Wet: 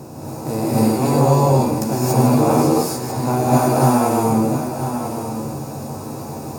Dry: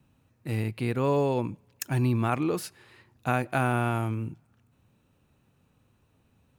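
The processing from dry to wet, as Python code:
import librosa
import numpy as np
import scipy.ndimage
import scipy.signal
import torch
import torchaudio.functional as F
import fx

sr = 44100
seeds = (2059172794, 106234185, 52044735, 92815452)

p1 = fx.bin_compress(x, sr, power=0.4)
p2 = fx.band_shelf(p1, sr, hz=2100.0, db=-12.5, octaves=1.7)
p3 = fx.doubler(p2, sr, ms=13.0, db=-5.0)
p4 = p3 + fx.echo_single(p3, sr, ms=995, db=-9.5, dry=0)
y = fx.rev_gated(p4, sr, seeds[0], gate_ms=310, shape='rising', drr_db=-7.0)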